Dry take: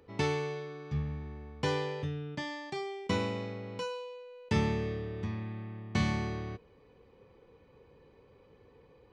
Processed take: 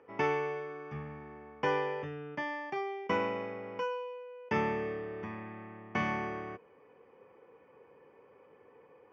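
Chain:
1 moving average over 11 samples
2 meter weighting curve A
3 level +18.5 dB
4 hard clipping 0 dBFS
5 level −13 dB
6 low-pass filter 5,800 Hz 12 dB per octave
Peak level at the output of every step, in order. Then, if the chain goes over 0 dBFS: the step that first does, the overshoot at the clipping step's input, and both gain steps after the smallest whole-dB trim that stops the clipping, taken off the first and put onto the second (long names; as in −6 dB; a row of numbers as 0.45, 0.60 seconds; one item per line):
−16.5, −24.0, −5.5, −5.5, −18.5, −18.5 dBFS
no step passes full scale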